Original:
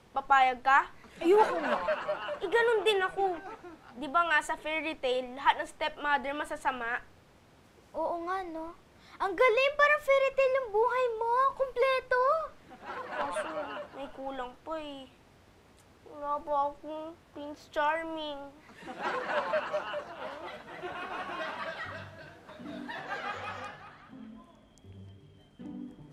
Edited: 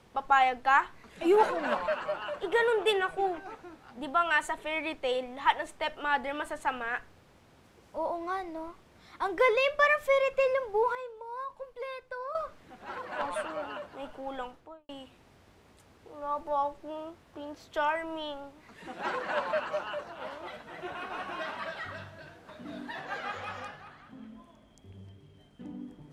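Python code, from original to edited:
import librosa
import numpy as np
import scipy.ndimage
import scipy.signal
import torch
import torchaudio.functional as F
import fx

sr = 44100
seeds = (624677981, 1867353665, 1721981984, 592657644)

y = fx.studio_fade_out(x, sr, start_s=14.45, length_s=0.44)
y = fx.edit(y, sr, fx.clip_gain(start_s=10.95, length_s=1.4, db=-12.0), tone=tone)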